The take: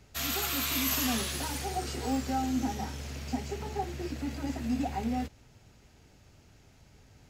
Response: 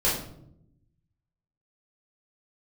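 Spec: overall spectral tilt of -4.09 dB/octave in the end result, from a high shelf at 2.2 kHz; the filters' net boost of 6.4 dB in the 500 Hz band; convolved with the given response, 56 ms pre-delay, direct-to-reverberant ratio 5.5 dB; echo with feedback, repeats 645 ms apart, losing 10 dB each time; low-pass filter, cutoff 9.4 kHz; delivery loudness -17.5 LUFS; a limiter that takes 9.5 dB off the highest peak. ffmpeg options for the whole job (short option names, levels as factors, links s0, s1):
-filter_complex "[0:a]lowpass=9400,equalizer=f=500:t=o:g=8,highshelf=f=2200:g=6,alimiter=limit=0.0631:level=0:latency=1,aecho=1:1:645|1290|1935|2580:0.316|0.101|0.0324|0.0104,asplit=2[s0][s1];[1:a]atrim=start_sample=2205,adelay=56[s2];[s1][s2]afir=irnorm=-1:irlink=0,volume=0.126[s3];[s0][s3]amix=inputs=2:normalize=0,volume=5.01"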